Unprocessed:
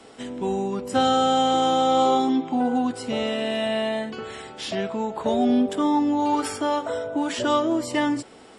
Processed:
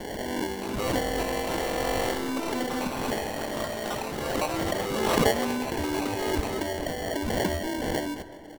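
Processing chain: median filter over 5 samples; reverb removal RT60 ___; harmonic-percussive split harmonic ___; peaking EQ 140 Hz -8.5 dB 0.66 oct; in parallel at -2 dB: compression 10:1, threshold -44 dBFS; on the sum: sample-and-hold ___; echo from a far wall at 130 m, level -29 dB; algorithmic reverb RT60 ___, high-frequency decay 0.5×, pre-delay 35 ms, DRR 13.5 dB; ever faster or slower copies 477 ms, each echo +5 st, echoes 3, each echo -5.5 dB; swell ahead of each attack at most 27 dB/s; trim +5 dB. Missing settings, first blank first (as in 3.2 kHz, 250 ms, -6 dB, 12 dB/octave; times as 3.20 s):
1.1 s, -15 dB, 35×, 3.8 s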